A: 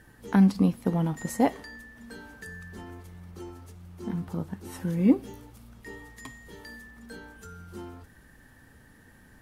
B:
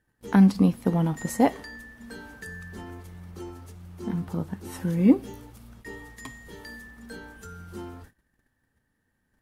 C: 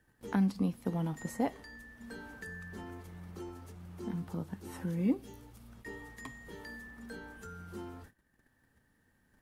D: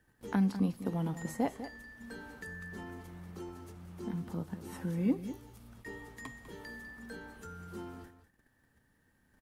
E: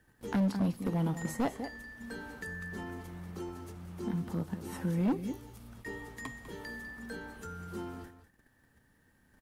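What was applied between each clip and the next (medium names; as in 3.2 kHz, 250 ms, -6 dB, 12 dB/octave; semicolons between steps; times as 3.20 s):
gate -50 dBFS, range -22 dB; trim +2.5 dB
three bands compressed up and down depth 40%; trim -8.5 dB
delay 199 ms -12 dB
overload inside the chain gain 28.5 dB; trim +3.5 dB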